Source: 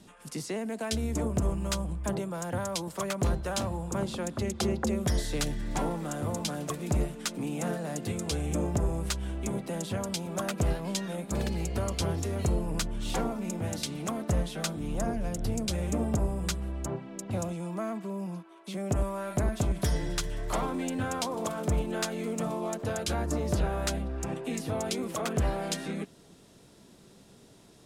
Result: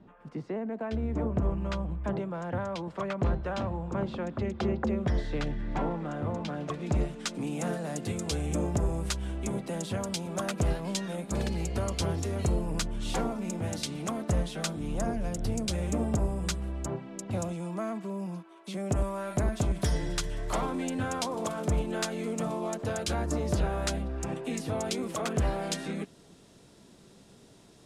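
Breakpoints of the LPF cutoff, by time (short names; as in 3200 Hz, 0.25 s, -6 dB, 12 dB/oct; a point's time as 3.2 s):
0.79 s 1400 Hz
1.69 s 2500 Hz
6.48 s 2500 Hz
7.08 s 6100 Hz
7.59 s 11000 Hz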